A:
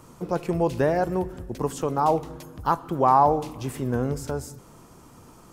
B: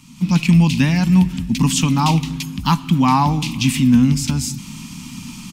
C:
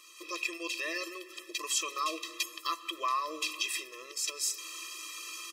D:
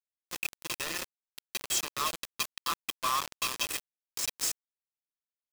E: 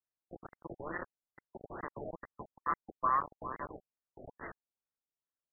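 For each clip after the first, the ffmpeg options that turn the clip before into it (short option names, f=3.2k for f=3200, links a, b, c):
-af "firequalizer=gain_entry='entry(110,0);entry(170,11);entry(250,11);entry(380,-22);entry(630,-19);entry(910,-4);entry(1500,-6);entry(2400,15);entry(11000,3)':delay=0.05:min_phase=1,dynaudnorm=f=150:g=3:m=13dB,volume=-2dB"
-af "alimiter=limit=-14.5dB:level=0:latency=1:release=289,afftfilt=real='re*eq(mod(floor(b*sr/1024/340),2),1)':imag='im*eq(mod(floor(b*sr/1024/340),2),1)':win_size=1024:overlap=0.75"
-filter_complex "[0:a]asplit=2[a][b];[b]adelay=378,lowpass=f=1.2k:p=1,volume=-4.5dB,asplit=2[c][d];[d]adelay=378,lowpass=f=1.2k:p=1,volume=0.42,asplit=2[e][f];[f]adelay=378,lowpass=f=1.2k:p=1,volume=0.42,asplit=2[g][h];[h]adelay=378,lowpass=f=1.2k:p=1,volume=0.42,asplit=2[i][j];[j]adelay=378,lowpass=f=1.2k:p=1,volume=0.42[k];[a][c][e][g][i][k]amix=inputs=6:normalize=0,acrusher=bits=4:mix=0:aa=0.000001"
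-af "afftfilt=real='re*lt(b*sr/1024,760*pow(2100/760,0.5+0.5*sin(2*PI*2.3*pts/sr)))':imag='im*lt(b*sr/1024,760*pow(2100/760,0.5+0.5*sin(2*PI*2.3*pts/sr)))':win_size=1024:overlap=0.75,volume=1dB"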